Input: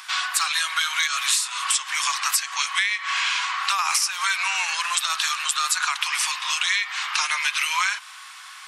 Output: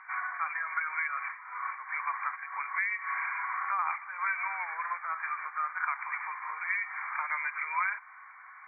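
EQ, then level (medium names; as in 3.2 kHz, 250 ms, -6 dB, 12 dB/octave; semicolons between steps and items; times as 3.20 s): brick-wall FIR low-pass 2.4 kHz; distance through air 260 m; -4.5 dB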